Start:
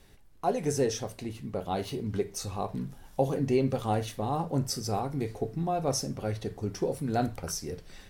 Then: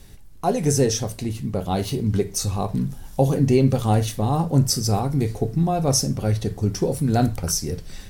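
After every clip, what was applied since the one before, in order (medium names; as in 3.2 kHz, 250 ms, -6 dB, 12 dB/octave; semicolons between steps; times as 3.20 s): tone controls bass +8 dB, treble +7 dB; trim +5.5 dB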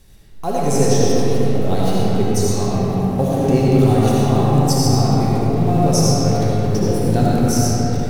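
in parallel at -11 dB: bit crusher 5-bit; on the sum: algorithmic reverb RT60 4.9 s, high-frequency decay 0.45×, pre-delay 35 ms, DRR -7 dB; trim -4.5 dB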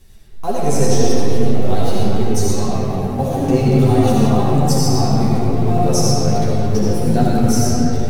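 chorus voices 6, 0.49 Hz, delay 11 ms, depth 3 ms; trim +3 dB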